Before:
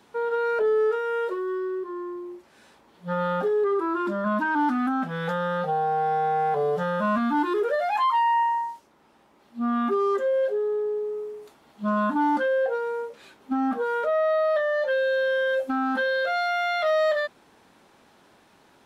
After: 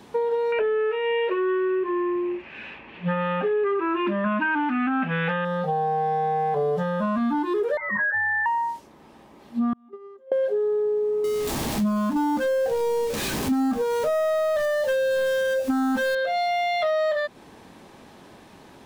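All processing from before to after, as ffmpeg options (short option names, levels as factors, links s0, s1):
-filter_complex "[0:a]asettb=1/sr,asplit=3[s0][s1][s2];[s0]atrim=end=0.524[s3];[s1]atrim=start=0.52:end=5.45,asetpts=PTS-STARTPTS,afade=t=in:d=0.004:c=qsin,afade=t=out:st=4.926:d=0.004:c=qsin,lowpass=f=2600:t=q:w=7.7,equalizer=f=1700:t=o:w=0.91:g=5.5[s4];[s2]atrim=start=5.446[s5];[s3][s4]acrossfade=d=0.004:c1=hsin:c2=qsin[s6];[s6][s5]acrossfade=d=0.004:c1=qsin:c2=hsin,asettb=1/sr,asplit=3[s7][s8][s9];[s7]atrim=end=7.774[s10];[s8]atrim=start=7.77:end=8.46,asetpts=PTS-STARTPTS,afade=t=in:d=0.004:c=qsin,afade=t=out:st=0.686:d=0.004:c=qsin,highpass=1100,lowpass=f=2300:t=q:w=0.5098,lowpass=f=2300:t=q:w=0.6013,lowpass=f=2300:t=q:w=0.9,lowpass=f=2300:t=q:w=2.563,afreqshift=-2700[s11];[s9]atrim=start=8.456[s12];[s10][s11]acrossfade=d=0.004:c1=hsin:c2=qsin[s13];[s13][s12]acrossfade=d=0.004:c1=qsin:c2=hsin,asettb=1/sr,asplit=3[s14][s15][s16];[s14]atrim=end=9.734[s17];[s15]atrim=start=9.73:end=10.32,asetpts=PTS-STARTPTS,afade=t=in:d=0.004:c=qsin,afade=t=out:st=0.586:d=0.004:c=qsin,lowpass=f=2200:p=1,equalizer=f=1700:w=3.2:g=-9,agate=range=0.0178:threshold=0.1:ratio=16:release=100:detection=peak[s18];[s16]atrim=start=10.316[s19];[s17][s18]acrossfade=d=0.004:c1=hsin:c2=qsin[s20];[s20][s19]acrossfade=d=0.004:c1=qsin:c2=hsin,asettb=1/sr,asplit=3[s21][s22][s23];[s21]atrim=end=11.244[s24];[s22]atrim=start=11.24:end=16.15,asetpts=PTS-STARTPTS,afade=t=in:d=0.004:c=qsin,afade=t=out:st=4.906:d=0.004:c=qsin,aeval=exprs='val(0)+0.5*0.0224*sgn(val(0))':c=same,bass=f=250:g=6,treble=f=4000:g=5[s25];[s23]atrim=start=16.146[s26];[s24][s25]acrossfade=d=0.004:c1=hsin:c2=qsin[s27];[s27][s26]acrossfade=d=0.004:c1=qsin:c2=hsin,lowshelf=f=380:g=7,bandreject=f=1400:w=10,acompressor=threshold=0.0355:ratio=6,volume=2.24"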